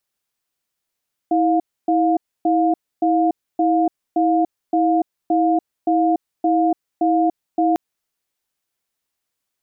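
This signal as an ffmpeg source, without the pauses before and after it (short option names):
-f lavfi -i "aevalsrc='0.15*(sin(2*PI*324*t)+sin(2*PI*708*t))*clip(min(mod(t,0.57),0.29-mod(t,0.57))/0.005,0,1)':d=6.45:s=44100"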